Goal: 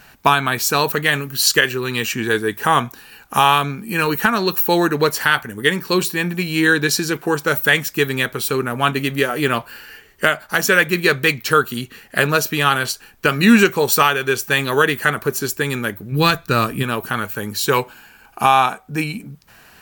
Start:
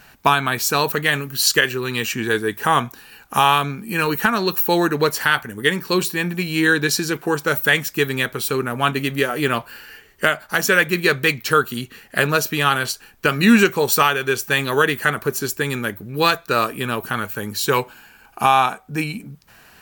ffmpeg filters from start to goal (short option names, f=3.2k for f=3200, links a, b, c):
-filter_complex "[0:a]asplit=3[a][b][c];[a]afade=t=out:st=16.11:d=0.02[d];[b]asubboost=boost=3.5:cutoff=250,afade=t=in:st=16.11:d=0.02,afade=t=out:st=16.82:d=0.02[e];[c]afade=t=in:st=16.82:d=0.02[f];[d][e][f]amix=inputs=3:normalize=0,volume=1.5dB"